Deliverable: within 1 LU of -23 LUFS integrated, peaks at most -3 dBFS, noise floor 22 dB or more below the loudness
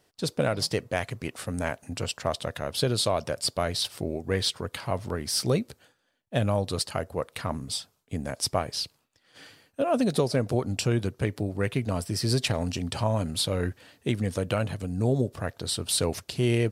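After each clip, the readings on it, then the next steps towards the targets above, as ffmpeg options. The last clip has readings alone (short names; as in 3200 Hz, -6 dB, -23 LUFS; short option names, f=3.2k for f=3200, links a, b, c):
loudness -28.5 LUFS; peak -10.0 dBFS; loudness target -23.0 LUFS
-> -af "volume=5.5dB"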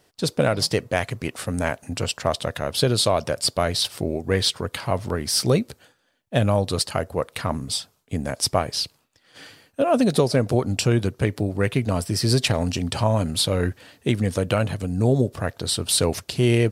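loudness -23.0 LUFS; peak -4.5 dBFS; noise floor -65 dBFS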